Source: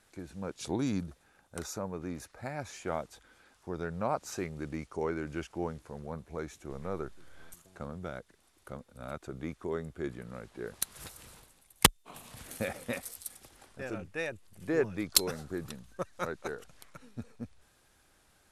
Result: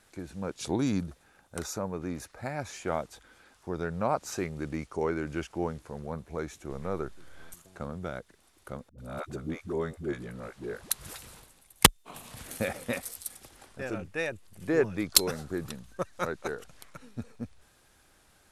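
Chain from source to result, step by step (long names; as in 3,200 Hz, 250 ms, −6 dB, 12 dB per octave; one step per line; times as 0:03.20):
0:08.89–0:11.22: all-pass dispersion highs, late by 91 ms, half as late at 320 Hz
level +3.5 dB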